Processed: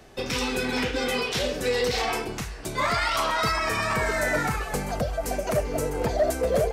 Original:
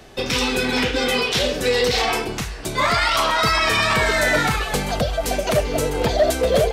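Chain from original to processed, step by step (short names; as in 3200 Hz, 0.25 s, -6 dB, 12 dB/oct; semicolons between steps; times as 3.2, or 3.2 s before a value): bell 3500 Hz -3.5 dB 0.85 oct, from 3.52 s -11 dB; gain -5.5 dB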